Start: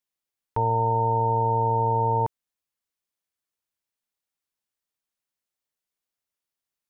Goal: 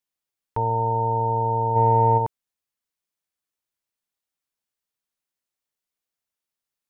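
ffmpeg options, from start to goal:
ffmpeg -i in.wav -filter_complex "[0:a]asplit=3[link_01][link_02][link_03];[link_01]afade=type=out:start_time=1.75:duration=0.02[link_04];[link_02]acontrast=38,afade=type=in:start_time=1.75:duration=0.02,afade=type=out:start_time=2.17:duration=0.02[link_05];[link_03]afade=type=in:start_time=2.17:duration=0.02[link_06];[link_04][link_05][link_06]amix=inputs=3:normalize=0" out.wav

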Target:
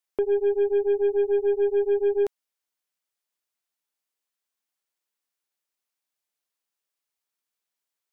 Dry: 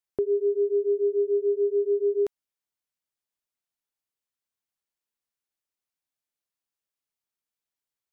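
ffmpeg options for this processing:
ffmpeg -i in.wav -af "highpass=frequency=350:poles=1,aeval=exprs='0.1*(cos(1*acos(clip(val(0)/0.1,-1,1)))-cos(1*PI/2))+0.00708*(cos(2*acos(clip(val(0)/0.1,-1,1)))-cos(2*PI/2))+0.00447*(cos(6*acos(clip(val(0)/0.1,-1,1)))-cos(6*PI/2))+0.002*(cos(8*acos(clip(val(0)/0.1,-1,1)))-cos(8*PI/2))':channel_layout=same,volume=4dB" out.wav

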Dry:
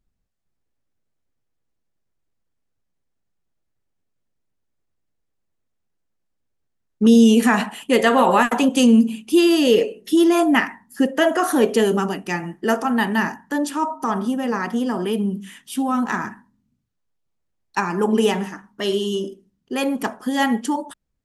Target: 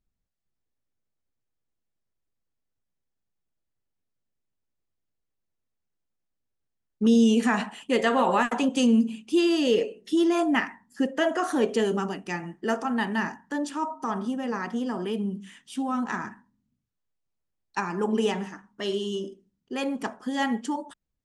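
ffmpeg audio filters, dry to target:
ffmpeg -i in.wav -af "lowpass=frequency=8700:width=0.5412,lowpass=frequency=8700:width=1.3066,volume=-7dB" out.wav

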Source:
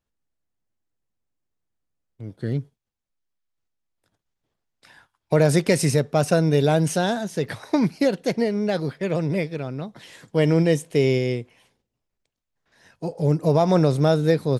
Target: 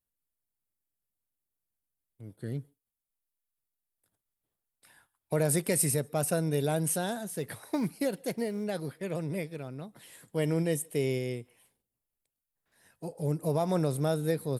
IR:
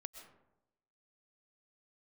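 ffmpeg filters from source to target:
-filter_complex "[0:a]aexciter=amount=8.2:drive=3:freq=8300,asettb=1/sr,asplit=3[link_01][link_02][link_03];[link_01]atrim=end=7.384[link_04];[link_02]atrim=start=7.38:end=8.64,asetpts=PTS-STARTPTS,afade=type=in:duration=0.004:curve=qsin,afade=type=out:start_time=1.256:duration=0.004:curve=qsin,acrusher=bits=8:mode=log:mix=0:aa=0.000001[link_05];[link_03]atrim=start=8.636[link_06];[link_04][link_05]acrossfade=duration=0.004:curve1=hsin:curve2=qsin[link_07];[link_07][link_06]acrossfade=duration=0.004:curve1=qsin:curve2=hsin[link_08];[1:a]atrim=start_sample=2205,afade=type=out:start_time=0.14:duration=0.01,atrim=end_sample=6615,asetrate=28665,aresample=44100[link_09];[link_08][link_09]afir=irnorm=-1:irlink=0,volume=-7dB"

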